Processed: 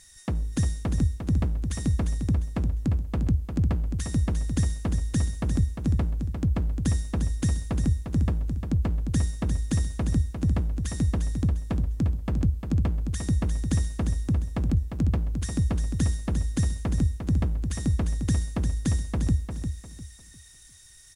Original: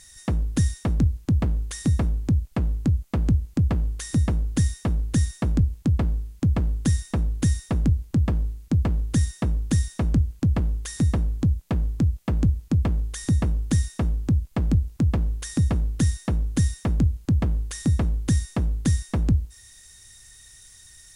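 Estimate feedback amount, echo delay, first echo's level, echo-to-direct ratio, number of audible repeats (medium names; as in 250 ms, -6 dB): 29%, 351 ms, -7.0 dB, -6.5 dB, 3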